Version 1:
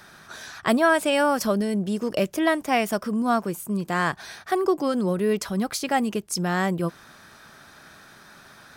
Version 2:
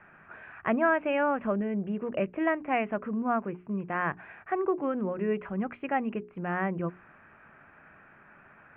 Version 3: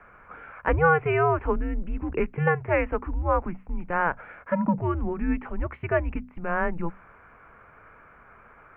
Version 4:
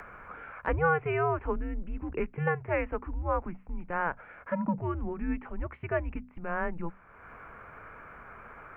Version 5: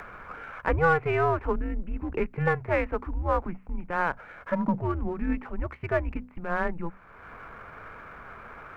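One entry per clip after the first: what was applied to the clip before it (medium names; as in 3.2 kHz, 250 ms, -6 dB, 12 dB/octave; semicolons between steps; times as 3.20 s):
steep low-pass 2.7 kHz 72 dB/octave; hum notches 60/120/180/240/300/360/420 Hz; trim -5.5 dB
frequency shift -170 Hz; dynamic bell 1.1 kHz, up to +3 dB, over -36 dBFS, Q 0.83; trim +3.5 dB
upward compressor, threshold -31 dBFS; trim -6 dB
partial rectifier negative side -3 dB; trim +5 dB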